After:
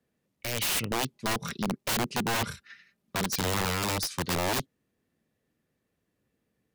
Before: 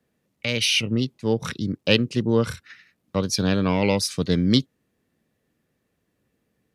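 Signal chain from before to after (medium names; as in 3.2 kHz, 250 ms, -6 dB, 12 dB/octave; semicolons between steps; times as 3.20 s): 1.13–3.33 s: comb 5 ms, depth 48%; integer overflow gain 17 dB; trim -5.5 dB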